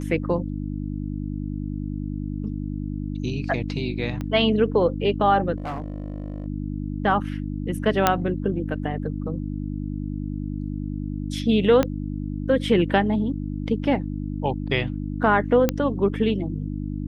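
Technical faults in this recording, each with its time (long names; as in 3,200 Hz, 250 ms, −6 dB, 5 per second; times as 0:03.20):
mains hum 50 Hz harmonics 6 −29 dBFS
0:04.21: click −18 dBFS
0:05.56–0:06.46: clipping −26 dBFS
0:08.07: click −2 dBFS
0:11.83: click −8 dBFS
0:15.69: click −6 dBFS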